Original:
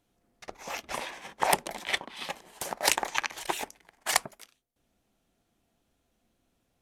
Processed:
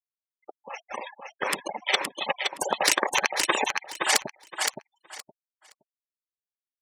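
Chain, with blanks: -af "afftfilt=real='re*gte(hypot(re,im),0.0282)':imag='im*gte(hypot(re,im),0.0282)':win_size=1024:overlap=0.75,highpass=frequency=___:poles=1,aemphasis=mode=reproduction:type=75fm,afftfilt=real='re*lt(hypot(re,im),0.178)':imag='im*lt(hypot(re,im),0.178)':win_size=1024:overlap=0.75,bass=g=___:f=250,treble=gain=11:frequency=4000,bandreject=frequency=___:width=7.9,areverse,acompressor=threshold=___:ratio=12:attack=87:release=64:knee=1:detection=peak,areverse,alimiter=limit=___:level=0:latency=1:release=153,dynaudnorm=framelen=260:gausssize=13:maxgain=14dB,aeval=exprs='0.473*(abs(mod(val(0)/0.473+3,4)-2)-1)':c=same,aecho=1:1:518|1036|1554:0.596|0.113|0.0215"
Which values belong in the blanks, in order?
180, -5, 680, -38dB, -16dB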